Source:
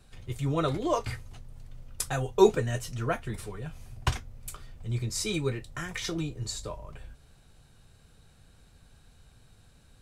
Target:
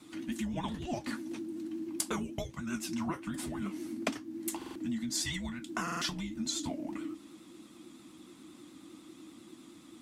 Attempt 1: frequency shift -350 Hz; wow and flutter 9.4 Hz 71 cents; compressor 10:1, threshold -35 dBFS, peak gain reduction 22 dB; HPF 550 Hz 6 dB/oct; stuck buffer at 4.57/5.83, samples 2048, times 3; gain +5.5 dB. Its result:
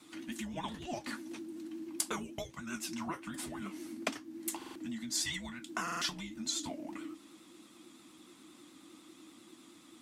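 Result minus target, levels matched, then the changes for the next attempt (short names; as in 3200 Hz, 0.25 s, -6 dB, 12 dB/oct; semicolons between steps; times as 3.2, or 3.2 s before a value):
250 Hz band -3.0 dB
change: HPF 190 Hz 6 dB/oct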